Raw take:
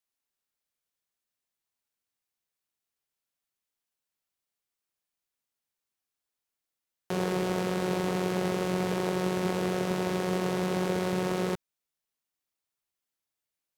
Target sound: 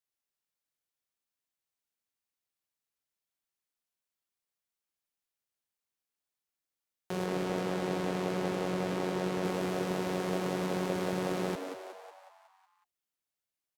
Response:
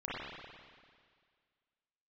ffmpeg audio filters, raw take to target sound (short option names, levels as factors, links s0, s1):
-filter_complex "[0:a]asettb=1/sr,asplit=3[s0][s1][s2];[s0]atrim=end=7.264[s3];[s1]atrim=start=7.26:end=9.44,asetpts=PTS-STARTPTS,afade=t=in:d=0.004:c=qsin,afade=t=out:st=2.176:d=0.004:c=qsin,highshelf=f=8400:g=-6[s4];[s2]atrim=start=9.436[s5];[s3][s4]acrossfade=d=0.004:c1=hsin:c2=qsin[s6];[s6][s5]acrossfade=d=0.004:c1=qsin:c2=hsin,asplit=8[s7][s8][s9][s10][s11][s12][s13][s14];[s8]adelay=184,afreqshift=97,volume=0.422[s15];[s9]adelay=368,afreqshift=194,volume=0.232[s16];[s10]adelay=552,afreqshift=291,volume=0.127[s17];[s11]adelay=736,afreqshift=388,volume=0.07[s18];[s12]adelay=920,afreqshift=485,volume=0.0385[s19];[s13]adelay=1104,afreqshift=582,volume=0.0211[s20];[s14]adelay=1288,afreqshift=679,volume=0.0116[s21];[s7][s15][s16][s17][s18][s19][s20][s21]amix=inputs=8:normalize=0,volume=0.596"